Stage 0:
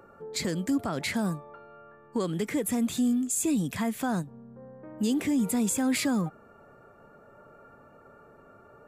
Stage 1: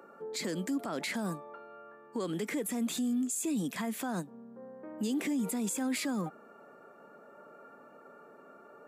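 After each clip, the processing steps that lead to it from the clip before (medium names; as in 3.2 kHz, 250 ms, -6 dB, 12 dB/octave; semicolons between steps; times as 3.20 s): high-pass 200 Hz 24 dB/octave; peak limiter -26 dBFS, peak gain reduction 7.5 dB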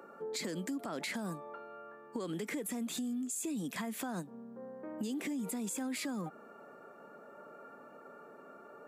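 compression, threshold -36 dBFS, peak gain reduction 7.5 dB; trim +1 dB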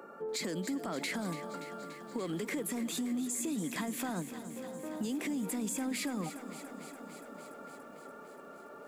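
in parallel at -8 dB: saturation -38 dBFS, distortion -12 dB; on the sum: bit-crushed delay 288 ms, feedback 80%, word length 10-bit, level -12.5 dB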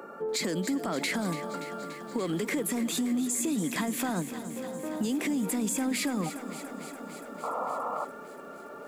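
painted sound noise, 7.43–8.05 s, 450–1400 Hz -39 dBFS; trim +6 dB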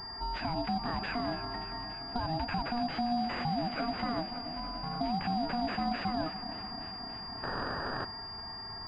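ring modulator 480 Hz; class-D stage that switches slowly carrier 4.8 kHz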